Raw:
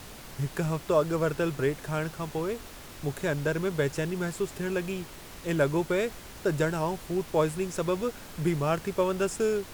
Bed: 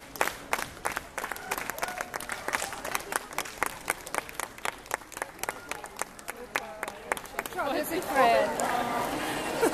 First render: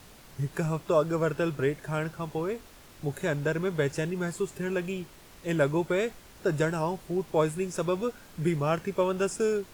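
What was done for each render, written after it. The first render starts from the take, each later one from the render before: noise print and reduce 7 dB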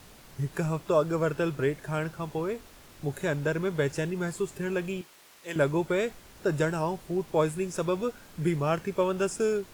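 5.01–5.56 HPF 900 Hz 6 dB/oct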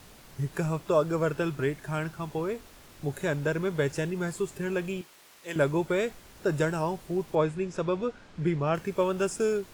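1.42–2.3 bell 510 Hz -7 dB 0.36 oct; 7.35–8.75 air absorption 110 m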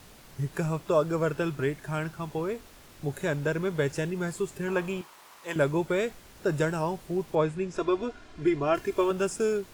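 4.68–5.54 bell 1000 Hz +11 dB 0.98 oct; 7.76–9.11 comb 2.9 ms, depth 80%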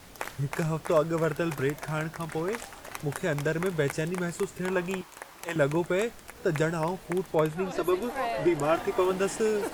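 add bed -8.5 dB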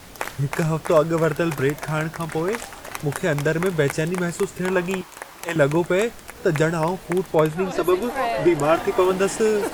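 gain +7 dB

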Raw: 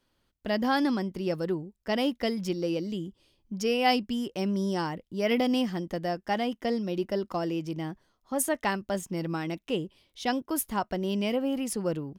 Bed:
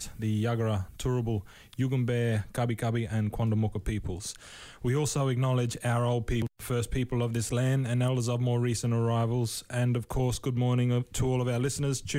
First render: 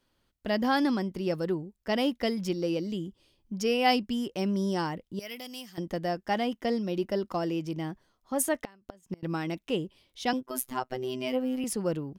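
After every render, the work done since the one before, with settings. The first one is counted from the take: 5.19–5.78 pre-emphasis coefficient 0.9; 8.63–9.23 flipped gate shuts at -23 dBFS, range -27 dB; 10.33–11.64 robotiser 128 Hz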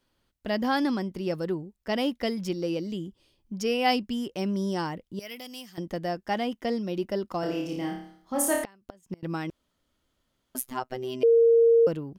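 7.4–8.64 flutter echo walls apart 4.8 m, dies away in 0.61 s; 9.5–10.55 room tone; 11.23–11.87 bleep 462 Hz -15 dBFS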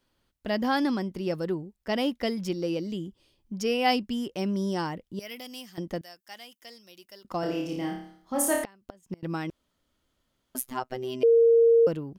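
6.01–7.25 pre-emphasis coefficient 0.97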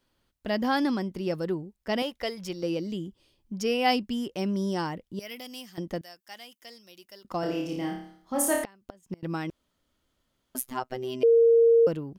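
2.02–2.63 bell 250 Hz -14 dB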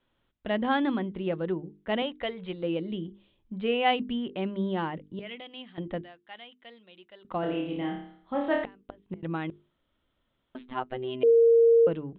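steep low-pass 3800 Hz 96 dB/oct; notches 50/100/150/200/250/300/350/400/450 Hz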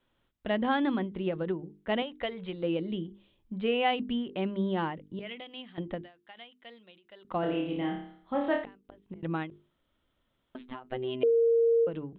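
compressor, threshold -22 dBFS, peak gain reduction 5.5 dB; ending taper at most 160 dB/s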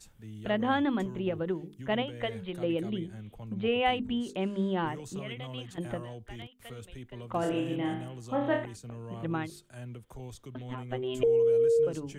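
add bed -15.5 dB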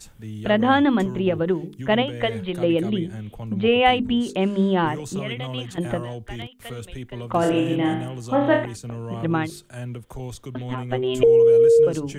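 gain +10 dB

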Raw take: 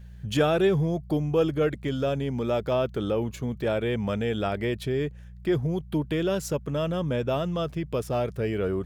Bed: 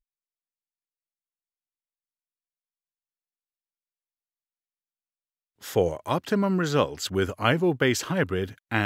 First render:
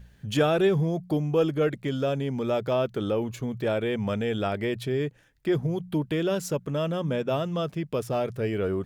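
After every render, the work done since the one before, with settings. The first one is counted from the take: de-hum 60 Hz, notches 3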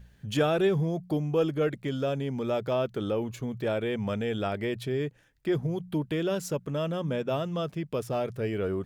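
gain -2.5 dB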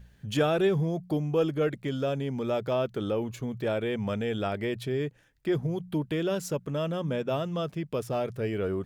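nothing audible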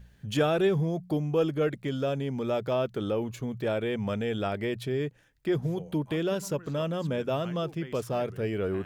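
add bed -23.5 dB

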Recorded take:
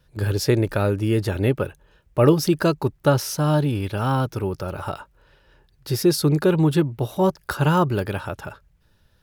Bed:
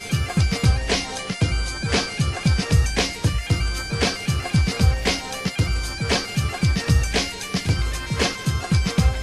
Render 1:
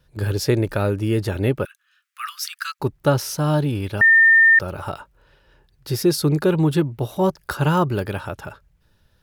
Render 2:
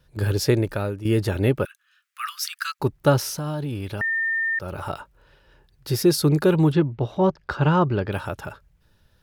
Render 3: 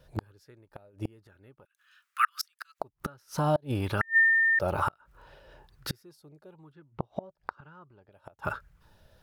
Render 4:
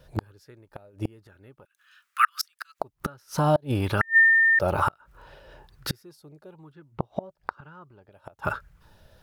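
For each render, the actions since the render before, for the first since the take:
1.65–2.8 steep high-pass 1200 Hz 72 dB/oct; 4.01–4.59 bleep 1810 Hz -9 dBFS
0.47–1.05 fade out, to -11.5 dB; 3.28–4.9 compressor 3:1, threshold -27 dBFS; 6.72–8.12 air absorption 170 m
flipped gate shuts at -19 dBFS, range -36 dB; LFO bell 1.1 Hz 600–1500 Hz +11 dB
gain +4.5 dB

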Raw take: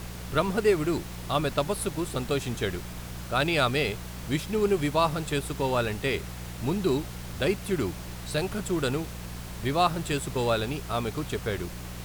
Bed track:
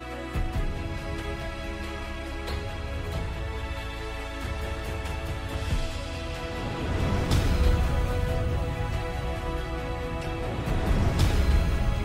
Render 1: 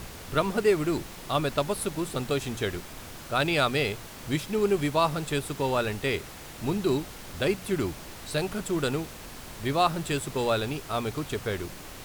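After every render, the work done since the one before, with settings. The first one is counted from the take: de-hum 60 Hz, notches 3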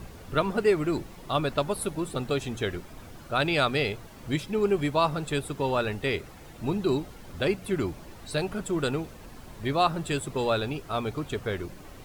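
denoiser 10 dB, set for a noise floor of -43 dBFS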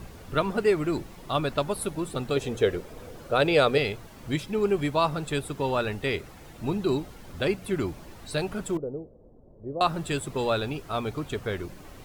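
2.36–3.78 bell 480 Hz +12.5 dB 0.54 oct; 8.77–9.81 ladder low-pass 610 Hz, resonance 50%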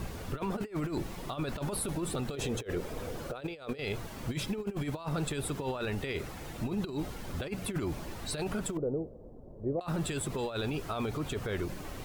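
negative-ratio compressor -30 dBFS, ratio -0.5; limiter -24.5 dBFS, peak gain reduction 9.5 dB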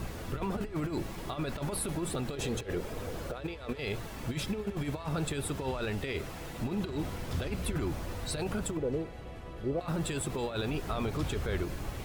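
add bed track -15 dB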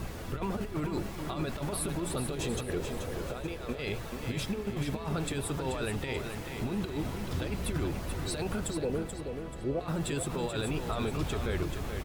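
feedback echo 0.433 s, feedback 37%, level -7 dB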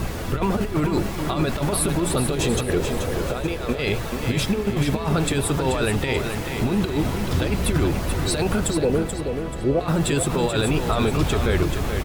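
gain +11.5 dB

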